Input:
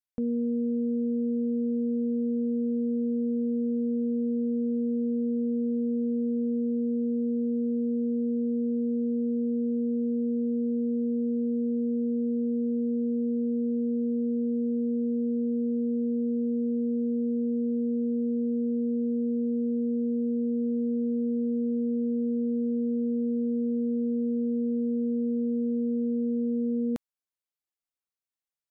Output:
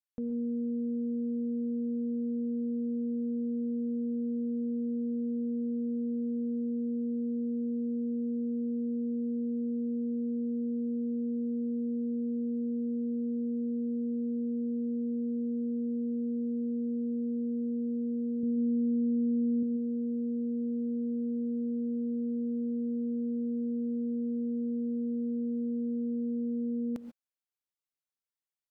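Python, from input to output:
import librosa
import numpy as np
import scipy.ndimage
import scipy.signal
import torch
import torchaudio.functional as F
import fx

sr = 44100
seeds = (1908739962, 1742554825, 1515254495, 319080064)

y = fx.bass_treble(x, sr, bass_db=8, treble_db=6, at=(18.43, 19.63))
y = fx.rev_gated(y, sr, seeds[0], gate_ms=160, shape='rising', drr_db=9.0)
y = y * 10.0 ** (-6.0 / 20.0)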